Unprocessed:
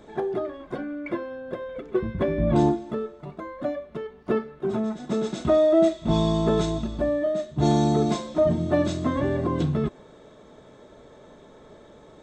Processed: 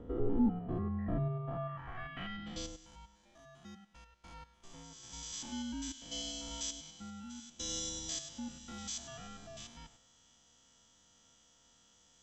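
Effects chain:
spectrum averaged block by block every 100 ms
band-pass filter sweep 710 Hz → 6,700 Hz, 0:01.24–0:02.73
frequency shifter −380 Hz
level +7 dB

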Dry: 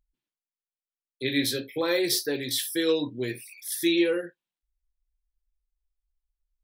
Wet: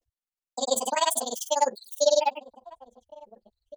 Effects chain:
gliding playback speed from 200% → 152%
slap from a distant wall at 290 metres, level −18 dB
granular cloud 57 ms, grains 20 per second, pitch spread up and down by 0 semitones
level +4.5 dB

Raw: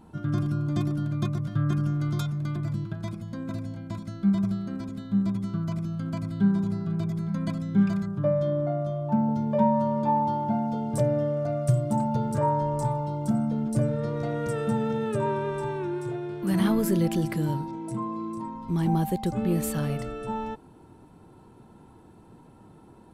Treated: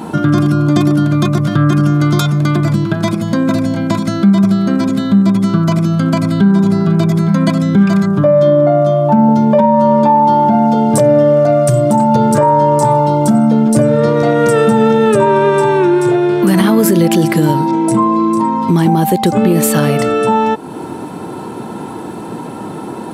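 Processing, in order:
high-pass filter 200 Hz 12 dB per octave
downward compressor 2 to 1, threshold −44 dBFS, peak gain reduction 14 dB
boost into a limiter +30 dB
level −1 dB

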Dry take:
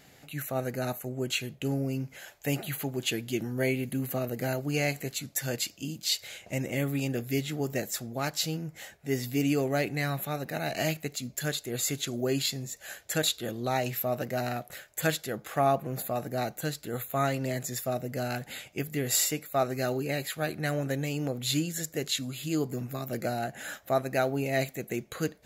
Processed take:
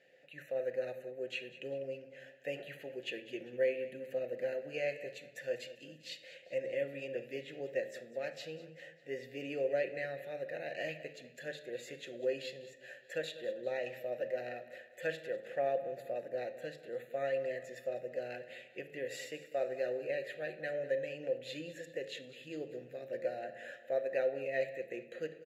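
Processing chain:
formant filter e
hum removal 108.6 Hz, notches 37
on a send: repeating echo 198 ms, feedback 49%, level −17 dB
on the sum: rectangular room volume 2,100 cubic metres, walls furnished, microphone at 0.93 metres
level +2.5 dB

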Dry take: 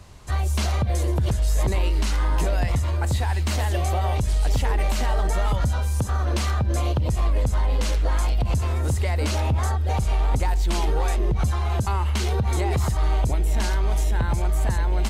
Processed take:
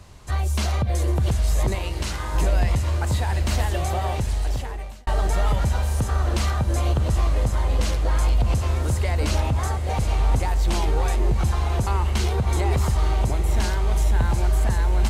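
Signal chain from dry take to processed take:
0:01.75–0:02.35: low-shelf EQ 330 Hz −10 dB
feedback delay with all-pass diffusion 827 ms, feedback 60%, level −10 dB
0:04.09–0:05.07: fade out

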